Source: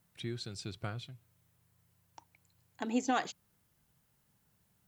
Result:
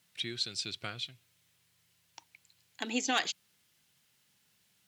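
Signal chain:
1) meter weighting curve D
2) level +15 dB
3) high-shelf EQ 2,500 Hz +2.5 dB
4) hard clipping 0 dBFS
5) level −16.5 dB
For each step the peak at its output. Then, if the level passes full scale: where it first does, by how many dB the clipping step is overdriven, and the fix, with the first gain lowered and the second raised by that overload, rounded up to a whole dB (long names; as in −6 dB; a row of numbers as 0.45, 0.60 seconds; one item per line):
−11.5, +3.5, +4.5, 0.0, −16.5 dBFS
step 2, 4.5 dB
step 2 +10 dB, step 5 −11.5 dB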